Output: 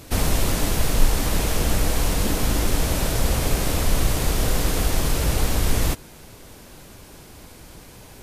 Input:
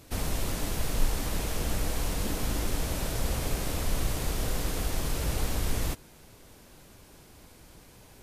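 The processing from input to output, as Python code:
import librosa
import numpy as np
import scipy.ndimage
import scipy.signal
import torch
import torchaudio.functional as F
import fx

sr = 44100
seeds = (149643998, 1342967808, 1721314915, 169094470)

y = fx.rider(x, sr, range_db=10, speed_s=0.5)
y = y * 10.0 ** (9.0 / 20.0)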